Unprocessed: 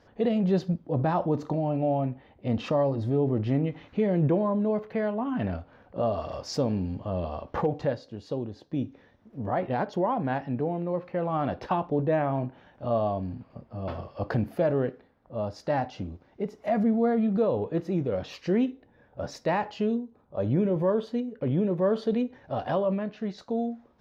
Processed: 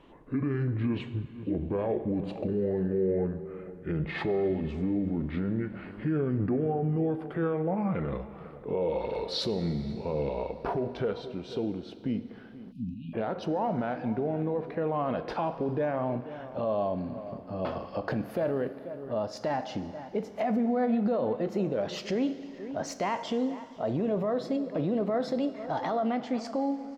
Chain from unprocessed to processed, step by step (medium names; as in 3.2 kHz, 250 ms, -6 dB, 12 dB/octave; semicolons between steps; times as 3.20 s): gliding tape speed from 59% -> 119%; echo from a far wall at 83 m, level -21 dB; in parallel at -0.5 dB: compression, threshold -36 dBFS, peak gain reduction 15.5 dB; on the sum: peaking EQ 85 Hz -12.5 dB 1.2 oct; peak limiter -21 dBFS, peak gain reduction 7.5 dB; Schroeder reverb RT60 2.9 s, combs from 32 ms, DRR 13 dB; spectral selection erased 12.72–13.14 s, 300–2400 Hz